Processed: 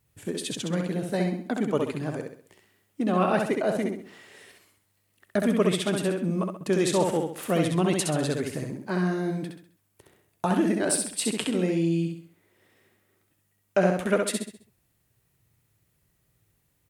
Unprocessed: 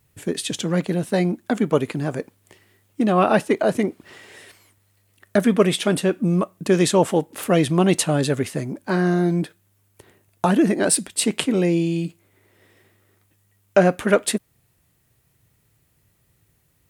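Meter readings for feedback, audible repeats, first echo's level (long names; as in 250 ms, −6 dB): 39%, 4, −4.0 dB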